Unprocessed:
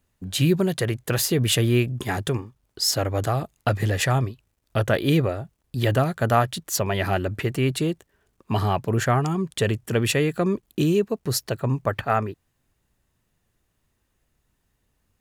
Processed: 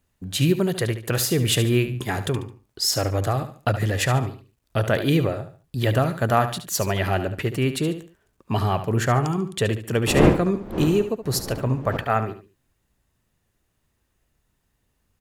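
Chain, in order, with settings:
0:10.06–0:11.96: wind on the microphone 440 Hz −27 dBFS
repeating echo 72 ms, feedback 32%, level −11 dB

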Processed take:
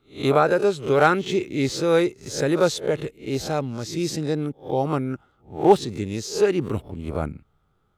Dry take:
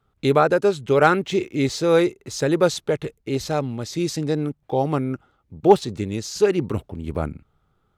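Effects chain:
peak hold with a rise ahead of every peak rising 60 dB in 0.30 s
level −2 dB

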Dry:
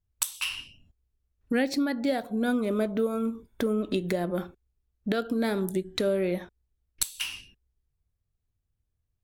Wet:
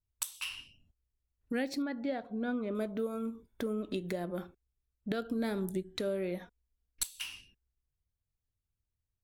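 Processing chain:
0:01.82–0:02.75: low-pass filter 3,100 Hz 12 dB per octave
0:05.11–0:05.84: low-shelf EQ 140 Hz +8 dB
0:06.39–0:07.07: comb filter 4.2 ms, depth 67%
level −8 dB

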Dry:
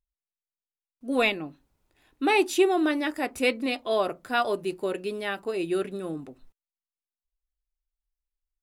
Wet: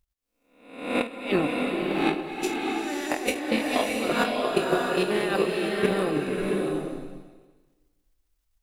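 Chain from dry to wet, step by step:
peak hold with a rise ahead of every peak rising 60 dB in 0.67 s
compressor whose output falls as the input rises −34 dBFS, ratio −1
transient designer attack +9 dB, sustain −11 dB
slow-attack reverb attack 670 ms, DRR −0.5 dB
level +1.5 dB

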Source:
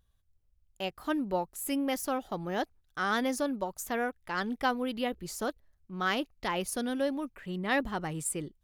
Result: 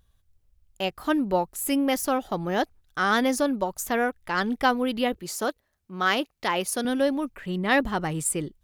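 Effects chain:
0:05.16–0:06.85: high-pass filter 270 Hz 6 dB per octave
level +7 dB

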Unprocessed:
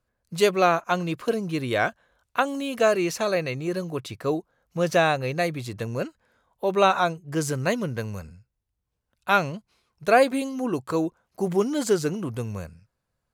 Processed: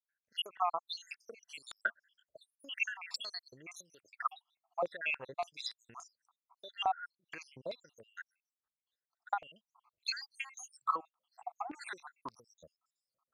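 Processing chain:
time-frequency cells dropped at random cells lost 80%
dynamic equaliser 3,100 Hz, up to +4 dB, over −47 dBFS, Q 1.4
downward compressor 4 to 1, threshold −38 dBFS, peak gain reduction 18.5 dB
band-pass on a step sequencer 3.5 Hz 710–6,300 Hz
level +12.5 dB

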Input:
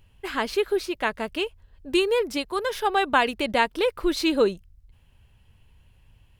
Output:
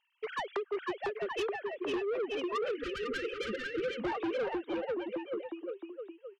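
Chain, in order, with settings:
three sine waves on the formant tracks
transient designer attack +7 dB, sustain −3 dB
downward compressor 16 to 1, threshold −24 dBFS, peak gain reduction 17 dB
bouncing-ball delay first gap 500 ms, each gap 0.85×, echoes 5
soft clipping −29.5 dBFS, distortion −8 dB
time-frequency box erased 0:02.72–0:04.00, 550–1,200 Hz

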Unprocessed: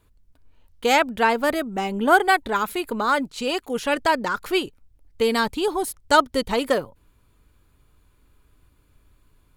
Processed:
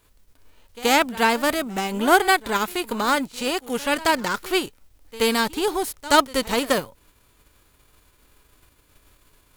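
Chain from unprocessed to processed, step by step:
spectral envelope flattened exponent 0.6
backwards echo 78 ms −19 dB

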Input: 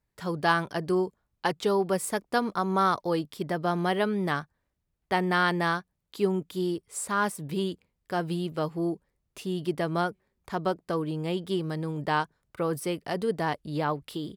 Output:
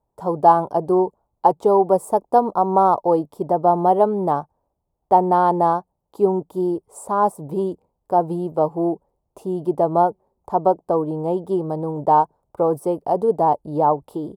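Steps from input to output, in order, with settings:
drawn EQ curve 200 Hz 0 dB, 880 Hz +13 dB, 1,800 Hz −21 dB, 4,100 Hz −17 dB, 8,900 Hz −7 dB
level +3 dB

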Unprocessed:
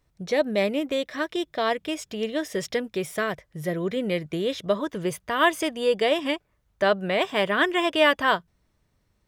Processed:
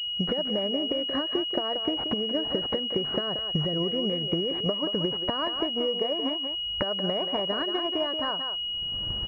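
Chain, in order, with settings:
camcorder AGC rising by 39 dB per second
transient designer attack +6 dB, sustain 0 dB
downward compressor 6 to 1, threshold −26 dBFS, peak gain reduction 15.5 dB
far-end echo of a speakerphone 180 ms, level −7 dB
switching amplifier with a slow clock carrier 2,900 Hz

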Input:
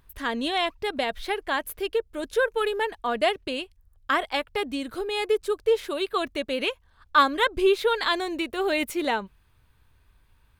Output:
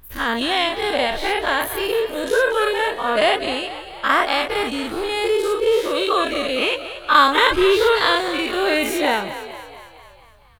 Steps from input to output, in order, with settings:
every bin's largest magnitude spread in time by 120 ms
on a send: echo with shifted repeats 229 ms, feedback 57%, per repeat +45 Hz, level −12.5 dB
on the sum: level +1.5 dB

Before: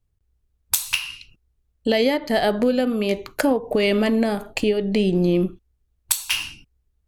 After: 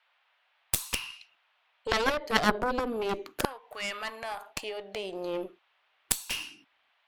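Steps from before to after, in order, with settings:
auto-filter high-pass saw down 0.29 Hz 260–1,500 Hz
harmonic generator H 3 −7 dB, 4 −23 dB, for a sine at −2 dBFS
noise in a band 640–3,300 Hz −71 dBFS

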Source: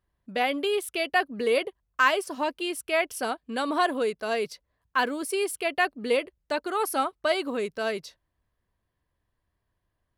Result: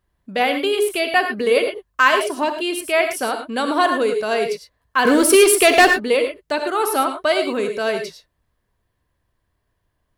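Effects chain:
0:05.05–0:05.97: leveller curve on the samples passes 3
reverb whose tail is shaped and stops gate 130 ms rising, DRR 6 dB
level +6.5 dB

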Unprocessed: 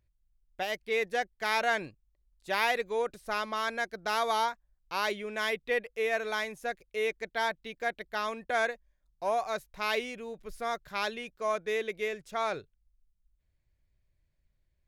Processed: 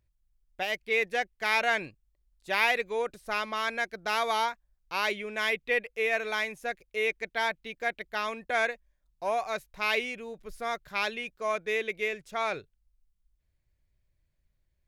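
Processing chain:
dynamic equaliser 2,400 Hz, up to +7 dB, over −48 dBFS, Q 2.1

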